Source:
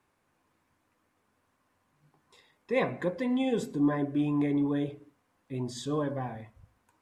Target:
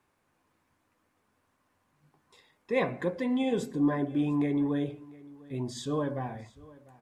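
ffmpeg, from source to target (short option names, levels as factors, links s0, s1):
-af "aecho=1:1:699:0.0794"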